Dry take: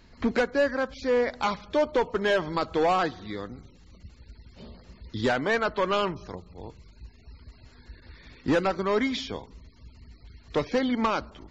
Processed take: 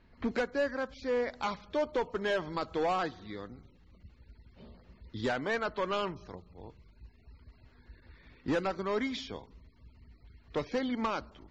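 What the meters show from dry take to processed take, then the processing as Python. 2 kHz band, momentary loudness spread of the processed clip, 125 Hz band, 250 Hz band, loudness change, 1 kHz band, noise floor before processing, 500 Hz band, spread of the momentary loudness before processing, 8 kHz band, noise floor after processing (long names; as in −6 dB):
−7.0 dB, 15 LU, −7.0 dB, −7.0 dB, −7.0 dB, −7.0 dB, −54 dBFS, −7.0 dB, 15 LU, can't be measured, −61 dBFS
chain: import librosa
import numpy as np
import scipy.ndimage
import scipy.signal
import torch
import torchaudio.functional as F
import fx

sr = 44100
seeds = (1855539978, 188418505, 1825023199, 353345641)

y = fx.env_lowpass(x, sr, base_hz=2700.0, full_db=-23.5)
y = y * 10.0 ** (-7.0 / 20.0)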